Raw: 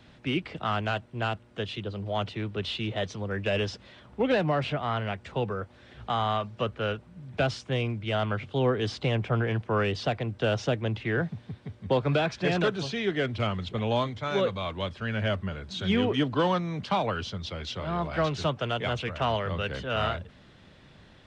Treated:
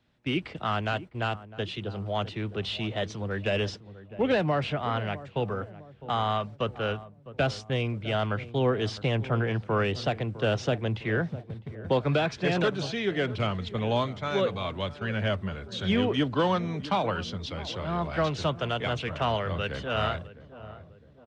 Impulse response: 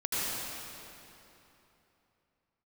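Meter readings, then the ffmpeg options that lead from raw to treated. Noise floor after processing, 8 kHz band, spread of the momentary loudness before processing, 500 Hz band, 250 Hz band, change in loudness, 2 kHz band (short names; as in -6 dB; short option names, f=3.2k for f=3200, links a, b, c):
-52 dBFS, n/a, 8 LU, 0.0 dB, 0.0 dB, 0.0 dB, 0.0 dB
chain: -filter_complex "[0:a]agate=range=-16dB:threshold=-40dB:ratio=16:detection=peak,asplit=2[a][b];[b]adelay=656,lowpass=f=850:p=1,volume=-14.5dB,asplit=2[c][d];[d]adelay=656,lowpass=f=850:p=1,volume=0.52,asplit=2[e][f];[f]adelay=656,lowpass=f=850:p=1,volume=0.52,asplit=2[g][h];[h]adelay=656,lowpass=f=850:p=1,volume=0.52,asplit=2[i][j];[j]adelay=656,lowpass=f=850:p=1,volume=0.52[k];[a][c][e][g][i][k]amix=inputs=6:normalize=0"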